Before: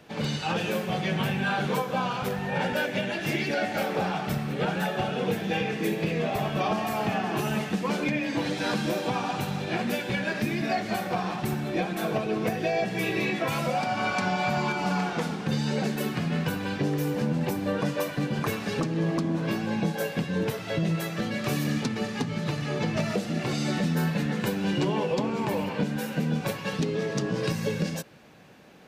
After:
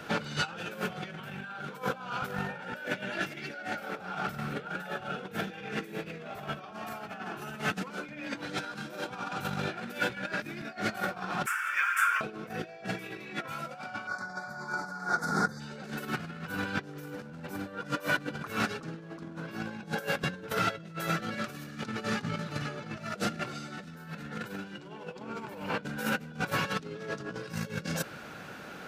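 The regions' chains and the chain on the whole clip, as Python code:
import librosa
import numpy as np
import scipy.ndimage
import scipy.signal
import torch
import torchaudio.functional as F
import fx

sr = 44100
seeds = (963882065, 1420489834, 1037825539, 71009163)

y = fx.chain(x, sr, fx.highpass(hz=1100.0, slope=24),
    fx.fixed_phaser(hz=1700.0, stages=4),
    fx.resample_linear(factor=2), at=(11.46, 12.21))
y = fx.chain(y, sr, fx.cheby1_bandstop(low_hz=1700.0, high_hz=4700.0, order=2),
    fx.high_shelf(hz=3200.0, db=5.5), at=(14.07, 15.6))
y = fx.low_shelf(y, sr, hz=450.0, db=-2.5)
y = fx.over_compress(y, sr, threshold_db=-36.0, ratio=-0.5)
y = fx.peak_eq(y, sr, hz=1400.0, db=14.0, octaves=0.24)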